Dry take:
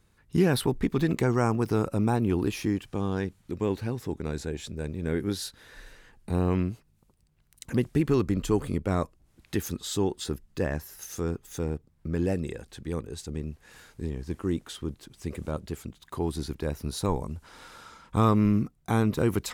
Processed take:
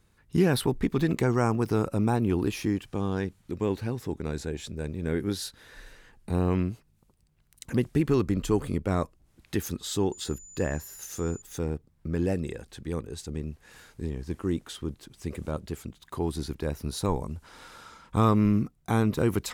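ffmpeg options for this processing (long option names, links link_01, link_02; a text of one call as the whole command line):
ffmpeg -i in.wav -filter_complex "[0:a]asettb=1/sr,asplit=3[link_01][link_02][link_03];[link_01]atrim=end=10.124[link_04];[link_02]atrim=start=10.12:end=11.42,asetpts=PTS-STARTPTS,afade=type=in:duration=0.004:curve=qsin,afade=type=out:start_time=1.296:duration=0.004:curve=qsin,aeval=exprs='val(0)+0.00501*sin(2*PI*7000*n/s)':channel_layout=same[link_05];[link_03]atrim=start=11.416[link_06];[link_04][link_05]acrossfade=duration=0.004:curve1=hsin:curve2=qsin[link_07];[link_07][link_06]acrossfade=duration=0.004:curve1=qsin:curve2=hsin" out.wav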